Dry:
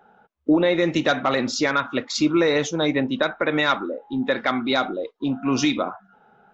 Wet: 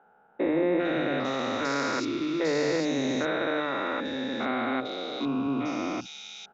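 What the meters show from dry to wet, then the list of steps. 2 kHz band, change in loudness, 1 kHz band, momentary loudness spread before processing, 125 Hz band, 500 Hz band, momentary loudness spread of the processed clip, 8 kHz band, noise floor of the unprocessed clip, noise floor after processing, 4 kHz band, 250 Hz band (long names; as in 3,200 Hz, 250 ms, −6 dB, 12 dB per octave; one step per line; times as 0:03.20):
−7.0 dB, −6.0 dB, −6.0 dB, 8 LU, −8.0 dB, −5.5 dB, 6 LU, can't be measured, −58 dBFS, −61 dBFS, −8.0 dB, −6.0 dB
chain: spectrum averaged block by block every 400 ms
low-shelf EQ 150 Hz −6 dB
three-band delay without the direct sound mids, lows, highs 50/450 ms, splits 180/2,900 Hz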